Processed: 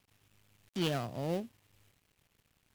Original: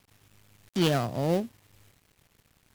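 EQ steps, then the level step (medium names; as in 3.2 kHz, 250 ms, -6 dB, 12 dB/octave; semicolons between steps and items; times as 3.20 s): peaking EQ 2.8 kHz +3 dB 0.6 oct; -8.5 dB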